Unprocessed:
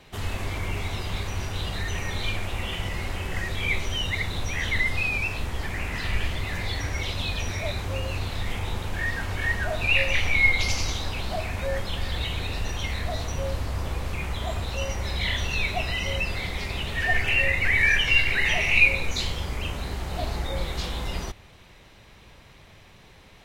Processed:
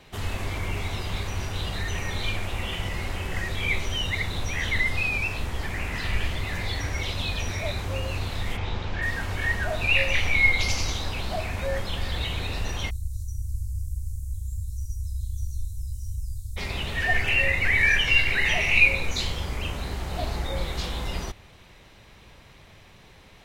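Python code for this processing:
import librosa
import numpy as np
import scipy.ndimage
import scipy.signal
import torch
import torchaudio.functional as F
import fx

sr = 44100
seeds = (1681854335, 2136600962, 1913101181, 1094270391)

y = fx.lowpass(x, sr, hz=5500.0, slope=24, at=(8.56, 9.01), fade=0.02)
y = fx.cheby2_bandstop(y, sr, low_hz=310.0, high_hz=2600.0, order=4, stop_db=60, at=(12.89, 16.56), fade=0.02)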